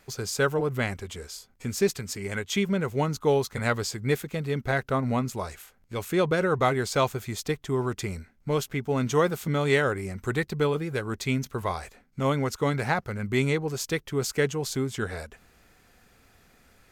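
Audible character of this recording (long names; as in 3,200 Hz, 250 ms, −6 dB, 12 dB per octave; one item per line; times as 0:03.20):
background noise floor −62 dBFS
spectral slope −5.0 dB per octave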